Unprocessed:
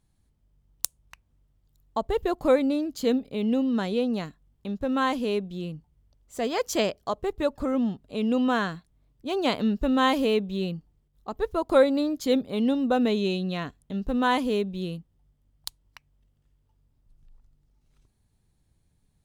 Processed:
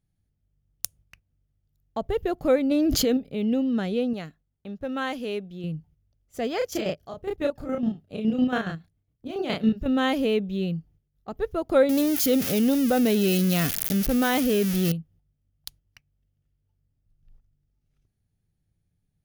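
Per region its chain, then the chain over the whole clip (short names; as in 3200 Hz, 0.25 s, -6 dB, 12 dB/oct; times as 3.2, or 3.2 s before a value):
2.71–3.17 bell 190 Hz -5 dB 0.91 oct + fast leveller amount 100%
4.13–5.64 low shelf 320 Hz -9 dB + mismatched tape noise reduction decoder only
6.58–9.86 chopper 7.2 Hz, depth 65%, duty 40% + doubler 32 ms -2.5 dB
11.89–14.92 switching spikes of -20 dBFS + fast leveller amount 50%
whole clip: thirty-one-band EQ 100 Hz +7 dB, 160 Hz +6 dB, 1000 Hz -11 dB, 4000 Hz -5 dB, 8000 Hz -9 dB; gate -53 dBFS, range -8 dB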